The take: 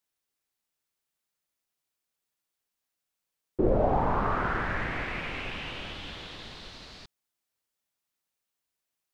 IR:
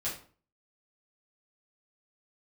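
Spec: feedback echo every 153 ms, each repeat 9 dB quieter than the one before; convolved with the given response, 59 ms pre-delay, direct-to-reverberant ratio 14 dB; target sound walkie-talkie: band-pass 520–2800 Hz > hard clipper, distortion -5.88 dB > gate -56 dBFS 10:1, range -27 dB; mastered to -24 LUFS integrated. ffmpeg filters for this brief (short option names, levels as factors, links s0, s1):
-filter_complex "[0:a]aecho=1:1:153|306|459|612:0.355|0.124|0.0435|0.0152,asplit=2[s0][s1];[1:a]atrim=start_sample=2205,adelay=59[s2];[s1][s2]afir=irnorm=-1:irlink=0,volume=0.133[s3];[s0][s3]amix=inputs=2:normalize=0,highpass=520,lowpass=2800,asoftclip=type=hard:threshold=0.0211,agate=range=0.0447:threshold=0.00158:ratio=10,volume=4.47"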